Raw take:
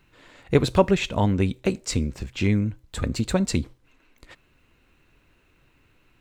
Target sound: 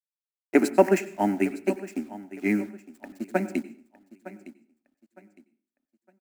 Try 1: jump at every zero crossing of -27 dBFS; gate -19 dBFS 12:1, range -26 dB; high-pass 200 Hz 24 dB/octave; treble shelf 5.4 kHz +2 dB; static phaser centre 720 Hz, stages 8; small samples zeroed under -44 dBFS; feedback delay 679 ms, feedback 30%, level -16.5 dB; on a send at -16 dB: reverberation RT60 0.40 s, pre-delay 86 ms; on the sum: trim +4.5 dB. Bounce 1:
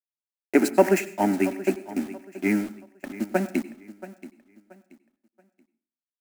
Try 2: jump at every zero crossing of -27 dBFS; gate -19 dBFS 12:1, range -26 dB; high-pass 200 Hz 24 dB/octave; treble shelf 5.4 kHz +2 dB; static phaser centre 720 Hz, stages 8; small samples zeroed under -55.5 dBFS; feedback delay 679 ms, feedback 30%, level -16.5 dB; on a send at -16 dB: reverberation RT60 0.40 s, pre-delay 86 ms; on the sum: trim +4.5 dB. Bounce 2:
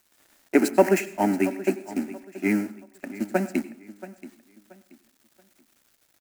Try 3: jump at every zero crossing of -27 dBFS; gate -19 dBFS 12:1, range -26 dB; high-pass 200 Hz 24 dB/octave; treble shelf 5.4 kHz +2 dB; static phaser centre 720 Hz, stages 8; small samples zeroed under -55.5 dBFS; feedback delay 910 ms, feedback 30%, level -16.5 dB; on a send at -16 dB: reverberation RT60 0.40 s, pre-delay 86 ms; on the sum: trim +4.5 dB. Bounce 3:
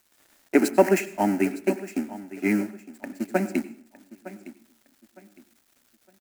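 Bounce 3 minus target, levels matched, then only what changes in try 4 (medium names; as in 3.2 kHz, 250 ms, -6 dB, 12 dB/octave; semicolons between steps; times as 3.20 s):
jump at every zero crossing: distortion +7 dB
change: jump at every zero crossing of -34.5 dBFS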